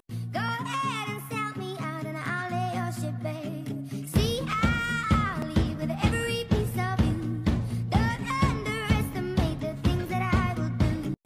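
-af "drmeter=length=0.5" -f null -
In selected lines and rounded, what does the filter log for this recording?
Channel 1: DR: 12.3
Overall DR: 12.3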